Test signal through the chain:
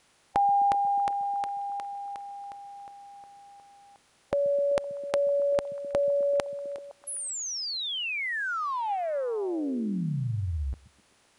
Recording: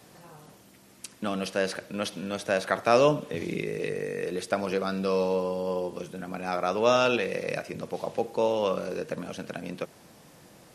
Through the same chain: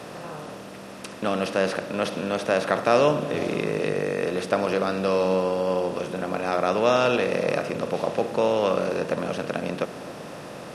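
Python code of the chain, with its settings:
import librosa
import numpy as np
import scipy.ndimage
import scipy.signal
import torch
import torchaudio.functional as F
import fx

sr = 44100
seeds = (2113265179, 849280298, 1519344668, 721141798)

y = fx.bin_compress(x, sr, power=0.6)
y = fx.high_shelf(y, sr, hz=4100.0, db=-5.0)
y = fx.echo_stepped(y, sr, ms=128, hz=160.0, octaves=0.7, feedback_pct=70, wet_db=-8)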